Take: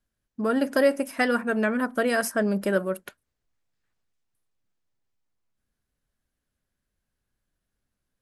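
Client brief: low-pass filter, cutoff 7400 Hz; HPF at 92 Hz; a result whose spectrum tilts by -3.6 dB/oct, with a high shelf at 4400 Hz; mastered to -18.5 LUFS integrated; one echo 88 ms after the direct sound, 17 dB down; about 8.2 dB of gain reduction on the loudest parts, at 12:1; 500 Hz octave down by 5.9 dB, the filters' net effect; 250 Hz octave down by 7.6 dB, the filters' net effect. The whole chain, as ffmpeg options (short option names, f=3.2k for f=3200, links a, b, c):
-af "highpass=92,lowpass=7.4k,equalizer=f=250:t=o:g=-7.5,equalizer=f=500:t=o:g=-5.5,highshelf=f=4.4k:g=5.5,acompressor=threshold=-29dB:ratio=12,aecho=1:1:88:0.141,volume=16dB"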